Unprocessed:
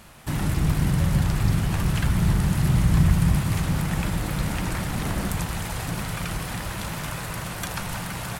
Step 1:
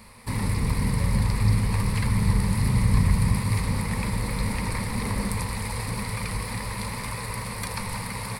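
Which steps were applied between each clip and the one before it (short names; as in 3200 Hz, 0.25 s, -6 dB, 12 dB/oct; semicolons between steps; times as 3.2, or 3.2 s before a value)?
ripple EQ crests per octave 0.92, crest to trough 12 dB; gain -2.5 dB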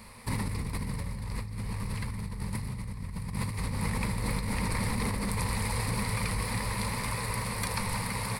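negative-ratio compressor -28 dBFS, ratio -1; gain -4 dB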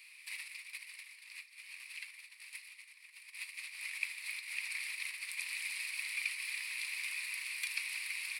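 ladder high-pass 2300 Hz, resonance 70%; gain +4 dB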